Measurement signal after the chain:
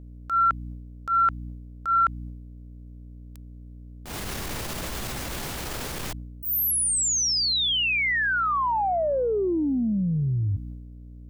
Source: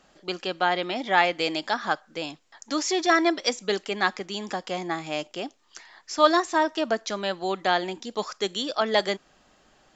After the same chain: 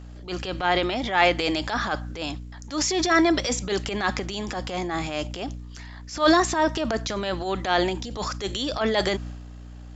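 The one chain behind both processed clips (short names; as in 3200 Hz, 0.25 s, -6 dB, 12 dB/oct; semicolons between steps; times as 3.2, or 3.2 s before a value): hum 60 Hz, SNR 16 dB; transient shaper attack -10 dB, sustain +7 dB; gain +2.5 dB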